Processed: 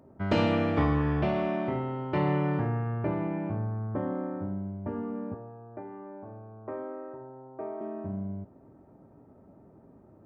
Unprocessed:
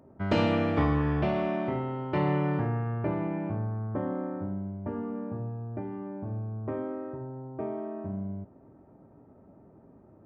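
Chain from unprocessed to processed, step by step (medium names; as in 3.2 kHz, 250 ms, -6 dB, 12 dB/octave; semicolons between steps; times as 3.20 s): 5.34–7.81 s: three-band isolator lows -14 dB, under 360 Hz, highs -14 dB, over 2.2 kHz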